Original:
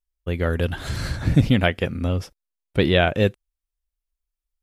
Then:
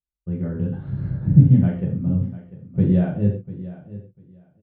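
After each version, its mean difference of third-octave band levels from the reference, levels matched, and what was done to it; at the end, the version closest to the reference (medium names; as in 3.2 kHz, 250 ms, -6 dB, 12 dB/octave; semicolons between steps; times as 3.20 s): 13.0 dB: band-pass filter 140 Hz, Q 1.3; distance through air 260 m; on a send: feedback delay 696 ms, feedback 17%, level -16 dB; on the sum: gated-style reverb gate 160 ms falling, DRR -3.5 dB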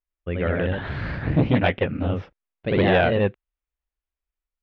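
6.0 dB: low-pass 2.7 kHz 24 dB/octave; bass shelf 64 Hz -10 dB; ever faster or slower copies 95 ms, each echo +1 st, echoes 2; transformer saturation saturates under 460 Hz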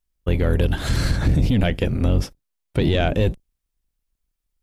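4.0 dB: octave divider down 1 oct, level -1 dB; dynamic bell 1.4 kHz, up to -6 dB, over -35 dBFS, Q 0.74; peak limiter -15 dBFS, peak gain reduction 13 dB; saturation -14 dBFS, distortion -24 dB; trim +6 dB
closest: third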